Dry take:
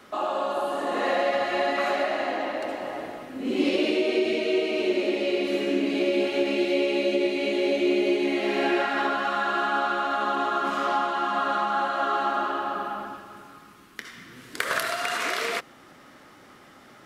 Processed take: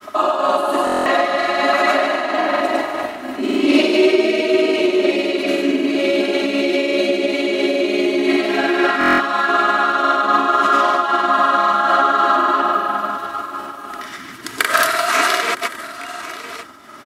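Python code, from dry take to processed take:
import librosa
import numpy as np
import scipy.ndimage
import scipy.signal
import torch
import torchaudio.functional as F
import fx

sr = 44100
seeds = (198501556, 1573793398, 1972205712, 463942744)

p1 = fx.hum_notches(x, sr, base_hz=60, count=6)
p2 = p1 + 0.44 * np.pad(p1, (int(3.1 * sr / 1000.0), 0))[:len(p1)]
p3 = p2 + fx.echo_single(p2, sr, ms=1045, db=-14.0, dry=0)
p4 = fx.granulator(p3, sr, seeds[0], grain_ms=100.0, per_s=20.0, spray_ms=100.0, spread_st=0)
p5 = fx.rider(p4, sr, range_db=4, speed_s=2.0)
p6 = p4 + (p5 * 10.0 ** (1.5 / 20.0))
p7 = scipy.signal.sosfilt(scipy.signal.butter(2, 54.0, 'highpass', fs=sr, output='sos'), p6)
p8 = fx.peak_eq(p7, sr, hz=1200.0, db=5.0, octaves=0.56)
p9 = 10.0 ** (-3.0 / 20.0) * np.tanh(p8 / 10.0 ** (-3.0 / 20.0))
p10 = fx.high_shelf(p9, sr, hz=7400.0, db=6.5)
p11 = fx.notch(p10, sr, hz=520.0, q=12.0)
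p12 = fx.buffer_glitch(p11, sr, at_s=(0.85, 8.99), block=1024, repeats=8)
p13 = fx.am_noise(p12, sr, seeds[1], hz=5.7, depth_pct=60)
y = p13 * 10.0 ** (5.0 / 20.0)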